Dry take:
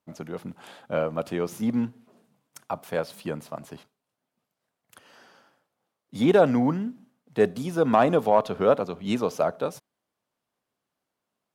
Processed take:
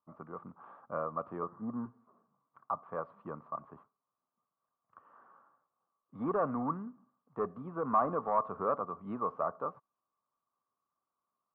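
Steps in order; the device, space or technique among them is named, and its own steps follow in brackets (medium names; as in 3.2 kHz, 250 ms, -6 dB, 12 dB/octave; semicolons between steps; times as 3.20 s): 1.43–1.86 s: steep low-pass 1.9 kHz 96 dB/octave; overdriven synthesiser ladder filter (saturation -15 dBFS, distortion -14 dB; four-pole ladder low-pass 1.2 kHz, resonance 85%)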